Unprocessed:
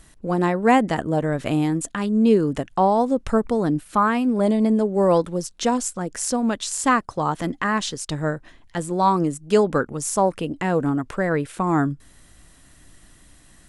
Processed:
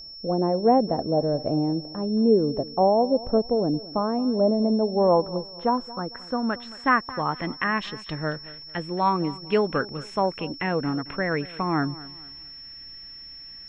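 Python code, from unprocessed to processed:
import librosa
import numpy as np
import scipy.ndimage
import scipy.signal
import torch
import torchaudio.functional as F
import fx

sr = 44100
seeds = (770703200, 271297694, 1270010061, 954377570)

y = fx.filter_sweep_lowpass(x, sr, from_hz=620.0, to_hz=2400.0, start_s=4.38, end_s=7.63, q=2.2)
y = y + 10.0 ** (-34.0 / 20.0) * np.sin(2.0 * np.pi * 5400.0 * np.arange(len(y)) / sr)
y = fx.echo_feedback(y, sr, ms=224, feedback_pct=34, wet_db=-18.5)
y = F.gain(torch.from_numpy(y), -5.0).numpy()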